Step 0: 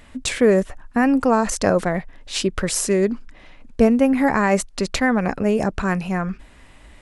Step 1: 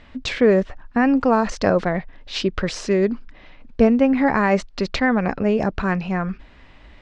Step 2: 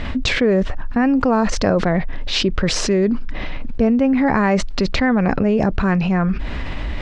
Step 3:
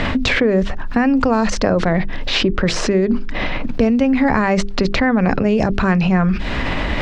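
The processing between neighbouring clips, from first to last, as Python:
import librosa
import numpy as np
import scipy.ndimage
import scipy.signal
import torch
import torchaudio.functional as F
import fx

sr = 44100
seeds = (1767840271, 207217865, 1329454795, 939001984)

y1 = scipy.signal.sosfilt(scipy.signal.butter(4, 5000.0, 'lowpass', fs=sr, output='sos'), x)
y2 = fx.low_shelf(y1, sr, hz=290.0, db=6.0)
y2 = fx.env_flatten(y2, sr, amount_pct=70)
y2 = F.gain(torch.from_numpy(y2), -5.5).numpy()
y3 = fx.hum_notches(y2, sr, base_hz=50, count=8)
y3 = fx.band_squash(y3, sr, depth_pct=70)
y3 = F.gain(torch.from_numpy(y3), 1.0).numpy()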